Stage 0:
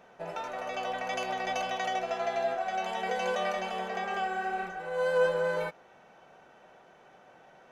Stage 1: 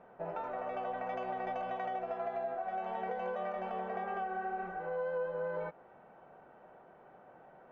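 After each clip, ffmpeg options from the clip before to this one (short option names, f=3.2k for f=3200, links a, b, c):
-af "lowpass=1.3k,acompressor=threshold=-34dB:ratio=6"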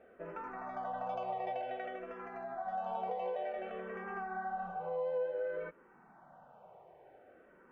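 -filter_complex "[0:a]asplit=2[a][b];[b]afreqshift=-0.55[c];[a][c]amix=inputs=2:normalize=1,volume=1dB"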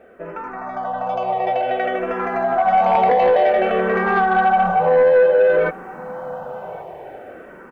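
-af "aecho=1:1:1115:0.0841,dynaudnorm=f=530:g=7:m=12dB,aeval=exprs='0.211*sin(PI/2*1.78*val(0)/0.211)':c=same,volume=4dB"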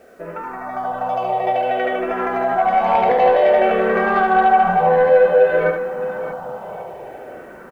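-af "acrusher=bits=9:mix=0:aa=0.000001,aecho=1:1:72|618:0.501|0.251"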